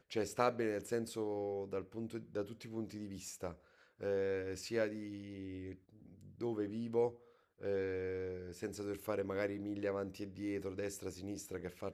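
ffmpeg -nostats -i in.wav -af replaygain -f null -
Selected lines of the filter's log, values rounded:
track_gain = +20.5 dB
track_peak = 0.105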